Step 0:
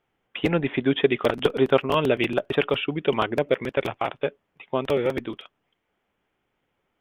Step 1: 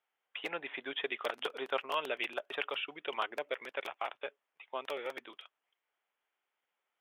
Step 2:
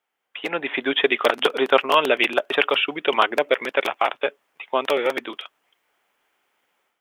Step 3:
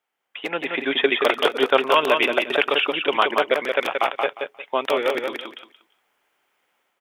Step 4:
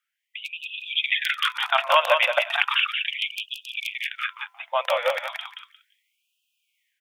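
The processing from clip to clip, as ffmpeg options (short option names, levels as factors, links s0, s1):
-af "highpass=760,volume=0.376"
-af "equalizer=f=240:w=1:g=6,dynaudnorm=f=380:g=3:m=3.55,volume=1.88"
-af "aecho=1:1:177|354|531:0.562|0.112|0.0225,volume=0.891"
-af "bandreject=f=338.8:t=h:w=4,bandreject=f=677.6:t=h:w=4,bandreject=f=1016.4:t=h:w=4,bandreject=f=1355.2:t=h:w=4,afftfilt=real='re*gte(b*sr/1024,480*pow(2500/480,0.5+0.5*sin(2*PI*0.35*pts/sr)))':imag='im*gte(b*sr/1024,480*pow(2500/480,0.5+0.5*sin(2*PI*0.35*pts/sr)))':win_size=1024:overlap=0.75"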